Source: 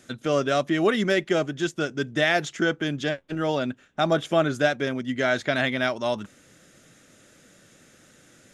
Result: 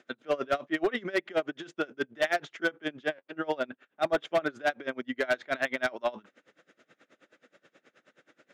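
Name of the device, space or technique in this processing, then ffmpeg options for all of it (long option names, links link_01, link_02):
helicopter radio: -af "highpass=350,lowpass=2700,aeval=exprs='val(0)*pow(10,-25*(0.5-0.5*cos(2*PI*9.4*n/s))/20)':channel_layout=same,asoftclip=type=hard:threshold=-21.5dB,volume=2dB"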